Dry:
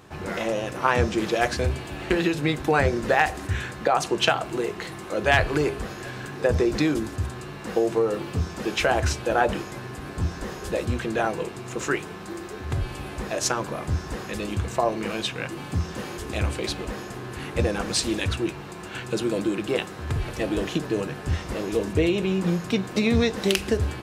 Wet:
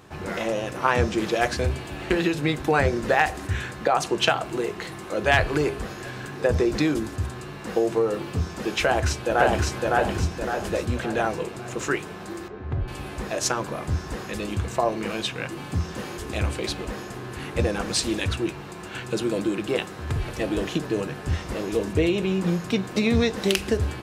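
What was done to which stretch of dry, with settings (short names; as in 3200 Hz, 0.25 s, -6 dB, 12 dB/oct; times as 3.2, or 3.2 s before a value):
8.83–9.68 echo throw 0.56 s, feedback 45%, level -1 dB
12.48–12.88 tape spacing loss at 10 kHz 36 dB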